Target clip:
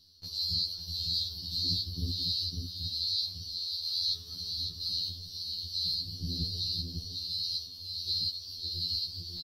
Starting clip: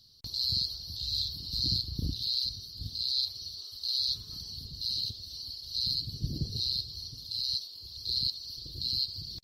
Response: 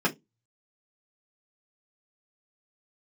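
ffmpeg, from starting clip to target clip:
-af "aecho=1:1:551:0.562,afftfilt=real='re*2*eq(mod(b,4),0)':imag='im*2*eq(mod(b,4),0)':win_size=2048:overlap=0.75,volume=1dB"

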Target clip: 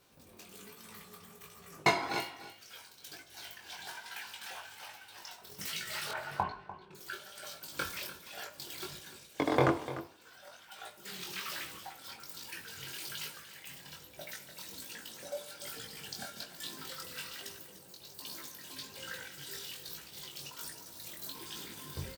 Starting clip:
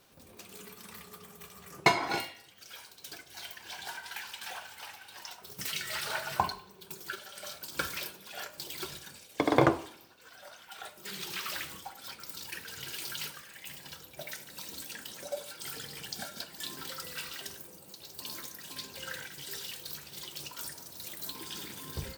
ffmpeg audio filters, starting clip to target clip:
-filter_complex "[0:a]asettb=1/sr,asplit=3[a][b][c];[a]atrim=end=6.114[d];[b]atrim=start=6.11:end=6.95,asetpts=PTS-STARTPTS,afade=t=in:d=0.004:c=qsin,afade=t=out:st=0.836:d=0.004:c=qsin,lowpass=2.1k[e];[c]atrim=start=6.946[f];[d][e]acrossfade=d=0.004:c1=hsin:c2=qsin[g];[g][f]acrossfade=d=0.004:c1=qsin:c2=hsin,flanger=delay=17.5:depth=5.1:speed=1.2,asplit=2[h][i];[i]aecho=0:1:297:0.2[j];[h][j]amix=inputs=2:normalize=0"

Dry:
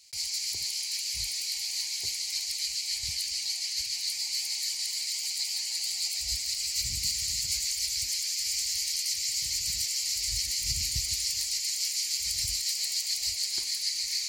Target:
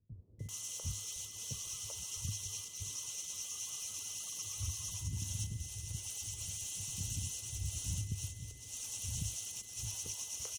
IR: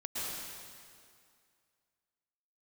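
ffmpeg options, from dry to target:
-filter_complex "[0:a]tiltshelf=f=1.2k:g=9.5,acrossover=split=7000[a][b];[b]acompressor=threshold=-50dB:ratio=4:attack=1:release=60[c];[a][c]amix=inputs=2:normalize=0,equalizer=f=76:t=o:w=0.29:g=10.5,acompressor=threshold=-34dB:ratio=10,aeval=exprs='val(0)+0.000562*sin(2*PI*1500*n/s)':c=same,acrossover=split=330[d][e];[e]adelay=530[f];[d][f]amix=inputs=2:normalize=0,asetrate=59535,aresample=44100,volume=-1.5dB"

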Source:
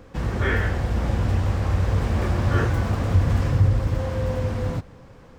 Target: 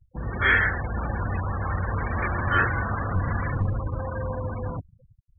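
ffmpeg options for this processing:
-filter_complex "[0:a]afftfilt=real='re*gte(hypot(re,im),0.0355)':imag='im*gte(hypot(re,im),0.0355)':win_size=1024:overlap=0.75,acrossover=split=280|520|1100[a][b][c][d];[a]aeval=exprs='clip(val(0),-1,0.0891)':c=same[e];[d]dynaudnorm=f=140:g=5:m=16dB[f];[e][b][c][f]amix=inputs=4:normalize=0,volume=-5.5dB"

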